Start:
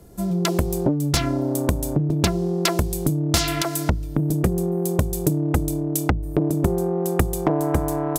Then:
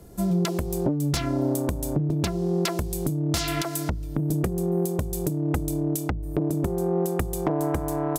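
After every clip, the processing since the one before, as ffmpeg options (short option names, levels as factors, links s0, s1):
-af "alimiter=limit=0.211:level=0:latency=1:release=324"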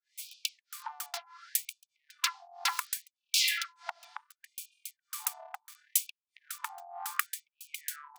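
-filter_complex "[0:a]acrossover=split=480[s0][s1];[s0]aeval=exprs='val(0)*(1-1/2+1/2*cos(2*PI*1.6*n/s))':c=same[s2];[s1]aeval=exprs='val(0)*(1-1/2-1/2*cos(2*PI*1.6*n/s))':c=same[s3];[s2][s3]amix=inputs=2:normalize=0,acrossover=split=310|680|5500[s4][s5][s6][s7];[s7]acrusher=bits=5:dc=4:mix=0:aa=0.000001[s8];[s4][s5][s6][s8]amix=inputs=4:normalize=0,afftfilt=real='re*gte(b*sr/1024,640*pow(2400/640,0.5+0.5*sin(2*PI*0.69*pts/sr)))':imag='im*gte(b*sr/1024,640*pow(2400/640,0.5+0.5*sin(2*PI*0.69*pts/sr)))':win_size=1024:overlap=0.75,volume=2"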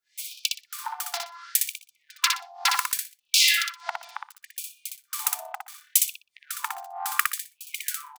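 -af "aecho=1:1:61|122|183:0.631|0.114|0.0204,volume=2.24"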